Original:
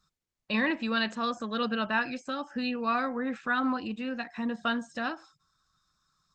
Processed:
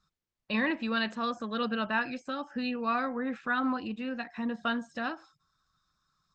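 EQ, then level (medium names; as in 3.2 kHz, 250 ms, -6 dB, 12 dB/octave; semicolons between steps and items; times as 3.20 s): distance through air 66 m; -1.0 dB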